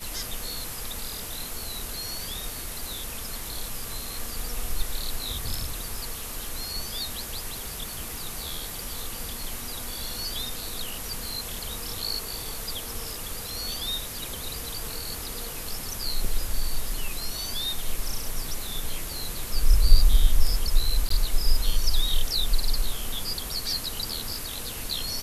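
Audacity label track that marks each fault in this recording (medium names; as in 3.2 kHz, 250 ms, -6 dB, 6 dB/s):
21.090000	21.100000	dropout 14 ms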